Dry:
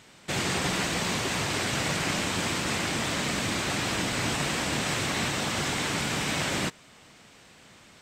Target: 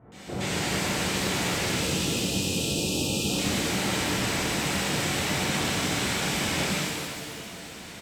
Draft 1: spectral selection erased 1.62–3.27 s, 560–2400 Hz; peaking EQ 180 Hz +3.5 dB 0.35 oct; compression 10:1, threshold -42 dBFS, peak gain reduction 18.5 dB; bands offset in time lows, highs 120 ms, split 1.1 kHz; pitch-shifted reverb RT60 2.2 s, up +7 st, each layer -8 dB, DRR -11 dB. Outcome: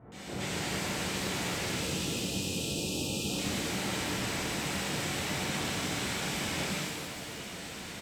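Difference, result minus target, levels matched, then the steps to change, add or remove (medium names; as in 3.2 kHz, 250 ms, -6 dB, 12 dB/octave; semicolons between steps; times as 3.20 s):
compression: peak gain reduction +6.5 dB
change: compression 10:1, threshold -35 dBFS, peak gain reduction 12 dB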